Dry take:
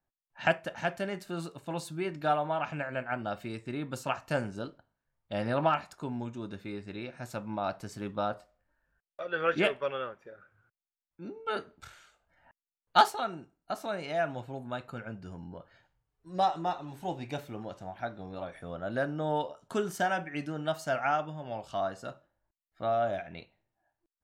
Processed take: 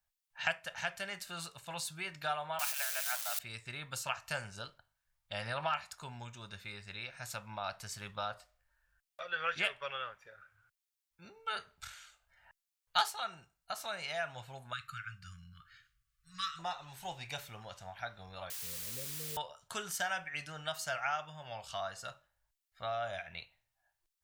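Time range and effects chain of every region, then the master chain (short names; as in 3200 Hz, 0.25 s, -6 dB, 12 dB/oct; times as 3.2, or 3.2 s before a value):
2.59–3.39 switching spikes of -26 dBFS + steep high-pass 570 Hz 72 dB/oct
14.73–16.59 brick-wall FIR band-stop 190–1100 Hz + bell 810 Hz +10 dB 0.74 oct
18.5–19.37 steep low-pass 510 Hz 96 dB/oct + low shelf 67 Hz -10.5 dB + requantised 8-bit, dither triangular
whole clip: passive tone stack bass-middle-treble 10-0-10; compressor 1.5:1, threshold -45 dBFS; gain +7 dB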